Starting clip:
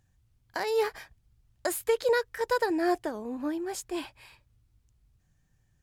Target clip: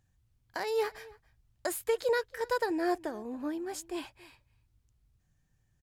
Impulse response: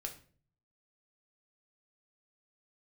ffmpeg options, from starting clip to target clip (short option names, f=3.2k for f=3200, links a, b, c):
-filter_complex "[0:a]asplit=2[a][b];[b]adelay=279.9,volume=-22dB,highshelf=f=4k:g=-6.3[c];[a][c]amix=inputs=2:normalize=0,volume=-3.5dB"